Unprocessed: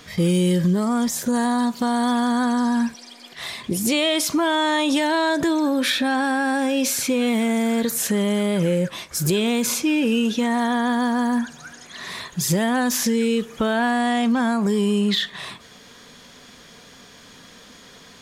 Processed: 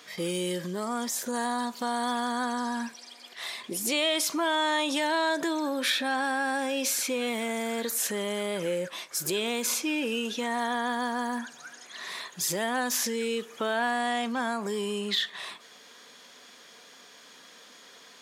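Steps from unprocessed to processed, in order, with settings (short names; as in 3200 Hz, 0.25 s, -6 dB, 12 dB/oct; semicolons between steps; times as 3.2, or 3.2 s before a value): HPF 320 Hz 12 dB/oct; low shelf 450 Hz -3.5 dB; gain -4.5 dB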